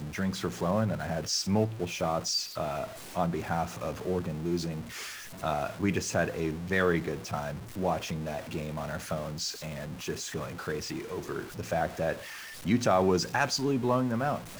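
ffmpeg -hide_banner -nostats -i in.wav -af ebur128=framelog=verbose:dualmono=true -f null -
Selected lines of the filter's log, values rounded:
Integrated loudness:
  I:         -28.2 LUFS
  Threshold: -38.2 LUFS
Loudness range:
  LRA:         5.5 LU
  Threshold: -48.9 LUFS
  LRA low:   -32.0 LUFS
  LRA high:  -26.5 LUFS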